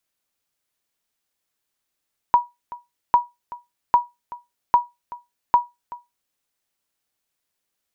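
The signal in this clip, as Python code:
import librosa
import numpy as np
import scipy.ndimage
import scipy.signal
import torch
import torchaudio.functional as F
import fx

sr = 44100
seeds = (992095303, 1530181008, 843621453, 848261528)

y = fx.sonar_ping(sr, hz=965.0, decay_s=0.2, every_s=0.8, pings=5, echo_s=0.38, echo_db=-19.5, level_db=-6.0)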